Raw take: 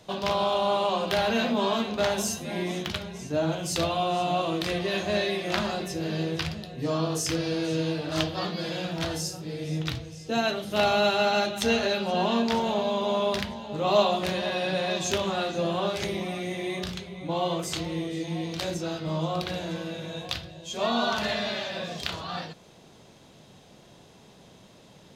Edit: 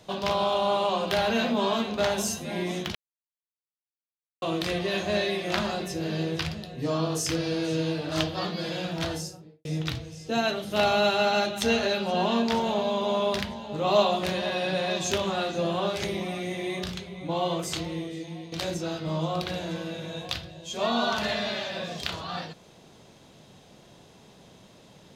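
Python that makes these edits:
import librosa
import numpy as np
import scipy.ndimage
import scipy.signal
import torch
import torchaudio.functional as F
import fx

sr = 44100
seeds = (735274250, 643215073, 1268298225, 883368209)

y = fx.studio_fade_out(x, sr, start_s=9.06, length_s=0.59)
y = fx.edit(y, sr, fx.silence(start_s=2.95, length_s=1.47),
    fx.fade_out_to(start_s=17.74, length_s=0.78, floor_db=-11.0), tone=tone)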